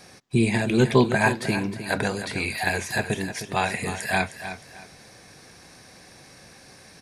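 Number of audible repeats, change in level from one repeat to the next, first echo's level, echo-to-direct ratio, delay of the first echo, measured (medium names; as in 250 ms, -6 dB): 2, -11.0 dB, -11.0 dB, -10.5 dB, 310 ms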